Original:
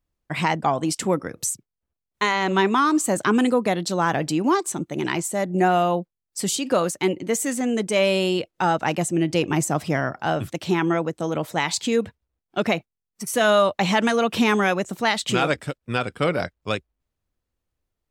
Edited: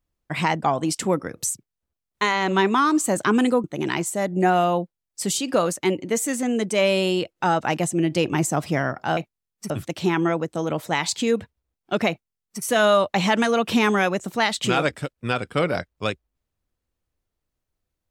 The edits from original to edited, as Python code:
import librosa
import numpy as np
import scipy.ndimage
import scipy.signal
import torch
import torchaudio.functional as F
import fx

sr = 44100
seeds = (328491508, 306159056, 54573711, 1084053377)

y = fx.edit(x, sr, fx.cut(start_s=3.64, length_s=1.18),
    fx.duplicate(start_s=12.74, length_s=0.53, to_s=10.35), tone=tone)